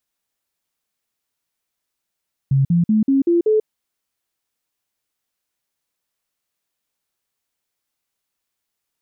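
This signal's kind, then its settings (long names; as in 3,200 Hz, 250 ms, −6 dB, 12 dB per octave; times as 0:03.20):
stepped sweep 136 Hz up, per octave 3, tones 6, 0.14 s, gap 0.05 s −12 dBFS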